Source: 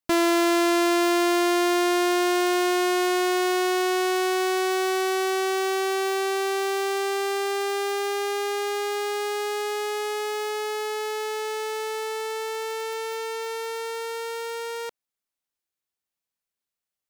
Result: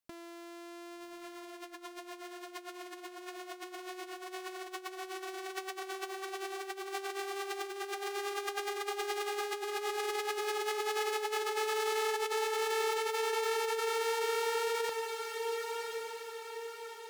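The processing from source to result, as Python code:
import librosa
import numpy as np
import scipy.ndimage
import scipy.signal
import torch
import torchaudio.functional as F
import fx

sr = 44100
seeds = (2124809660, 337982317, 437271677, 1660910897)

y = fx.echo_diffused(x, sr, ms=1119, feedback_pct=47, wet_db=-5)
y = fx.over_compress(y, sr, threshold_db=-29.0, ratio=-0.5)
y = F.gain(torch.from_numpy(y), -7.5).numpy()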